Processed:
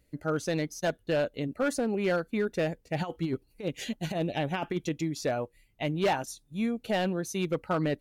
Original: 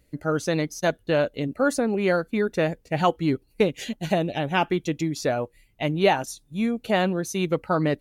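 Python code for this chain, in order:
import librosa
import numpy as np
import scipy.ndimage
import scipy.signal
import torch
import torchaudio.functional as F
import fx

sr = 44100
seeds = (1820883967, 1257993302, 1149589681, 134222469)

y = fx.over_compress(x, sr, threshold_db=-23.0, ratio=-0.5, at=(2.98, 4.89), fade=0.02)
y = np.clip(y, -10.0 ** (-16.0 / 20.0), 10.0 ** (-16.0 / 20.0))
y = F.gain(torch.from_numpy(y), -5.0).numpy()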